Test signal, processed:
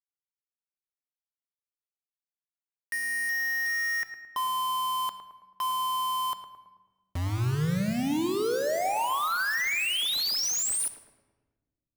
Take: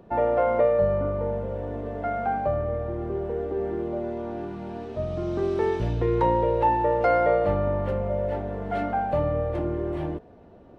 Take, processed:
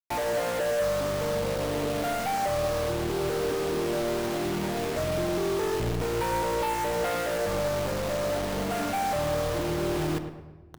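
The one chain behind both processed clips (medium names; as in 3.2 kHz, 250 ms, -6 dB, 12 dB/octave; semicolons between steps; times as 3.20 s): compression 3:1, threshold -29 dBFS; companded quantiser 2-bit; on a send: filtered feedback delay 109 ms, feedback 52%, low-pass 1.5 kHz, level -8 dB; on the sum: simulated room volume 1100 m³, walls mixed, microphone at 0.47 m; trim -3 dB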